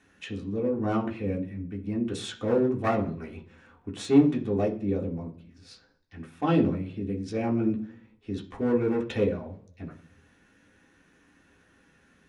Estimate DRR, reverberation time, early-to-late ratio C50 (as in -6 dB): -3.0 dB, 0.45 s, 12.5 dB